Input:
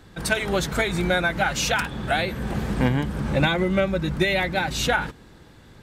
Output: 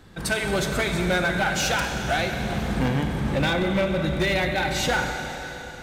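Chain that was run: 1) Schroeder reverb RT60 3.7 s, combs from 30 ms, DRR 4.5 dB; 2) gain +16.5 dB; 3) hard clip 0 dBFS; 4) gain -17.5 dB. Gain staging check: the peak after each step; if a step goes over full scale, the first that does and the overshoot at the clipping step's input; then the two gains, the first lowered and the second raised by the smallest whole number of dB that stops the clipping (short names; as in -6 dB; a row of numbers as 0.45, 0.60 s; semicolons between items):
-8.0, +8.5, 0.0, -17.5 dBFS; step 2, 8.5 dB; step 2 +7.5 dB, step 4 -8.5 dB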